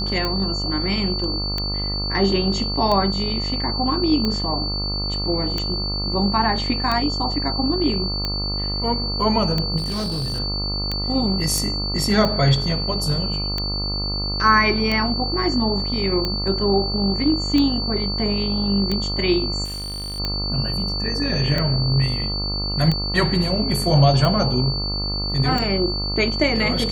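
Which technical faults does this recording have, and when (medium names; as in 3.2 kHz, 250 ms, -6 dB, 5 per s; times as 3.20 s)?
buzz 50 Hz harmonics 27 -27 dBFS
tick 45 rpm -10 dBFS
whine 4.5 kHz -25 dBFS
9.77–10.40 s: clipped -21.5 dBFS
11.58 s: pop
19.64–20.20 s: clipped -27.5 dBFS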